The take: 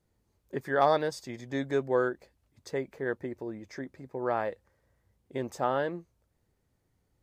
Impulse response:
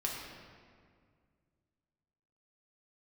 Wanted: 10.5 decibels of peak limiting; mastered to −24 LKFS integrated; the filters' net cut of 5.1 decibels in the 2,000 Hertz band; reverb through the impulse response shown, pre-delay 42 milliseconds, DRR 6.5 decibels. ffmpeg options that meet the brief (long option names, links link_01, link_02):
-filter_complex "[0:a]equalizer=frequency=2000:width_type=o:gain=-7,alimiter=limit=-22.5dB:level=0:latency=1,asplit=2[link_01][link_02];[1:a]atrim=start_sample=2205,adelay=42[link_03];[link_02][link_03]afir=irnorm=-1:irlink=0,volume=-10dB[link_04];[link_01][link_04]amix=inputs=2:normalize=0,volume=11.5dB"